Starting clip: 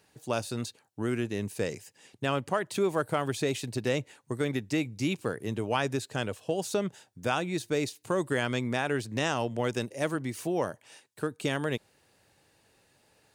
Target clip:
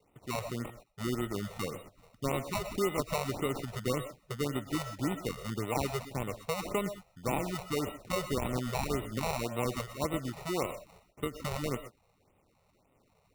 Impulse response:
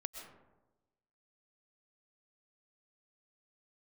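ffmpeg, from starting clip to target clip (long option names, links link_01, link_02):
-filter_complex "[0:a]acrusher=samples=27:mix=1:aa=0.000001[link_01];[1:a]atrim=start_sample=2205,afade=type=out:start_time=0.18:duration=0.01,atrim=end_sample=8379[link_02];[link_01][link_02]afir=irnorm=-1:irlink=0,afftfilt=real='re*(1-between(b*sr/1024,260*pow(5500/260,0.5+0.5*sin(2*PI*1.8*pts/sr))/1.41,260*pow(5500/260,0.5+0.5*sin(2*PI*1.8*pts/sr))*1.41))':imag='im*(1-between(b*sr/1024,260*pow(5500/260,0.5+0.5*sin(2*PI*1.8*pts/sr))/1.41,260*pow(5500/260,0.5+0.5*sin(2*PI*1.8*pts/sr))*1.41))':win_size=1024:overlap=0.75"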